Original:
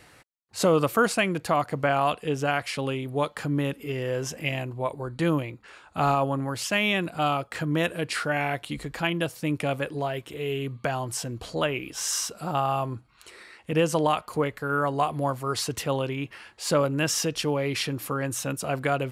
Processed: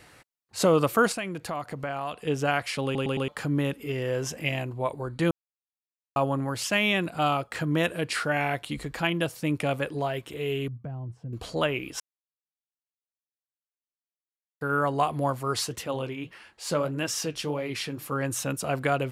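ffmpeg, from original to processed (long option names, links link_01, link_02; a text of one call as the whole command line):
ffmpeg -i in.wav -filter_complex "[0:a]asettb=1/sr,asplit=3[link_01][link_02][link_03];[link_01]atrim=end=1.124[link_04];[link_02]atrim=start=1.12:end=2.27,asetpts=PTS-STARTPTS,afade=type=in:duration=0.004:curve=qsin,afade=type=out:start_time=1.146:duration=0.004:curve=qsin,acompressor=threshold=-35dB:ratio=2:attack=3.2:release=140:knee=1:detection=peak[link_05];[link_03]atrim=start=2.266[link_06];[link_04][link_05]acrossfade=duration=0.004:curve1=hsin:curve2=qsin[link_07];[link_07][link_06]acrossfade=duration=0.004:curve1=qsin:curve2=hsin,asettb=1/sr,asplit=3[link_08][link_09][link_10];[link_08]atrim=end=10.684[link_11];[link_09]atrim=start=10.68:end=11.33,asetpts=PTS-STARTPTS,afade=type=in:duration=0.004:curve=qsin,afade=type=out:start_time=0.646:duration=0.004:curve=qsin,bandpass=frequency=120:width_type=q:width=1.3[link_12];[link_10]atrim=start=11.326[link_13];[link_11][link_12]acrossfade=duration=0.004:curve1=hsin:curve2=qsin[link_14];[link_14][link_13]acrossfade=duration=0.004:curve1=qsin:curve2=hsin,asplit=3[link_15][link_16][link_17];[link_15]afade=type=out:start_time=15.65:duration=0.02[link_18];[link_16]flanger=delay=3.3:depth=8.1:regen=-61:speed=1.7:shape=sinusoidal,afade=type=in:start_time=15.65:duration=0.02,afade=type=out:start_time=18.11:duration=0.02[link_19];[link_17]afade=type=in:start_time=18.11:duration=0.02[link_20];[link_18][link_19][link_20]amix=inputs=3:normalize=0,asplit=9[link_21][link_22][link_23][link_24][link_25][link_26][link_27][link_28][link_29];[link_21]atrim=end=2.952[link_30];[link_22]atrim=start=2.838:end=2.952[link_31];[link_23]atrim=start=2.838:end=2.952[link_32];[link_24]atrim=start=2.838:end=2.952[link_33];[link_25]atrim=start=3.278:end=5.31,asetpts=PTS-STARTPTS,afade=type=out:start_time=2.028:duration=0.004:curve=hsin[link_34];[link_26]atrim=start=5.31:end=6.16,asetpts=PTS-STARTPTS,volume=0[link_35];[link_27]atrim=start=6.16:end=12,asetpts=PTS-STARTPTS,afade=type=in:duration=0.004:curve=hsin,afade=type=out:start_time=5.836:duration=0.004:curve=hsin[link_36];[link_28]atrim=start=12:end=14.61,asetpts=PTS-STARTPTS,volume=0[link_37];[link_29]atrim=start=14.61,asetpts=PTS-STARTPTS,afade=type=in:duration=0.004:curve=hsin[link_38];[link_30][link_31]acrossfade=duration=0.004:curve1=hsin:curve2=hsin[link_39];[link_39][link_32]acrossfade=duration=0.004:curve1=hsin:curve2=hsin[link_40];[link_40][link_33]acrossfade=duration=0.004:curve1=hsin:curve2=hsin[link_41];[link_34][link_35][link_36][link_37][link_38]concat=n=5:v=0:a=1[link_42];[link_41][link_42]acrossfade=duration=0.004:curve1=hsin:curve2=hsin" out.wav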